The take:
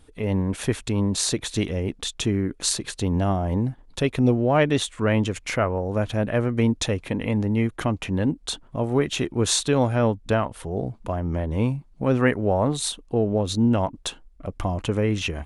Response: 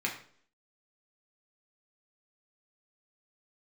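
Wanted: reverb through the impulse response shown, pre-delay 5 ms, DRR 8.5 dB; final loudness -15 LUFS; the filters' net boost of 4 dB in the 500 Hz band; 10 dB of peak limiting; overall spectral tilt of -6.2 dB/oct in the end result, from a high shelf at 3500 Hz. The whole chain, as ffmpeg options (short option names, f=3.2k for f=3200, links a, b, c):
-filter_complex "[0:a]equalizer=f=500:t=o:g=5,highshelf=f=3.5k:g=-5,alimiter=limit=-15.5dB:level=0:latency=1,asplit=2[a][b];[1:a]atrim=start_sample=2205,adelay=5[c];[b][c]afir=irnorm=-1:irlink=0,volume=-15dB[d];[a][d]amix=inputs=2:normalize=0,volume=10dB"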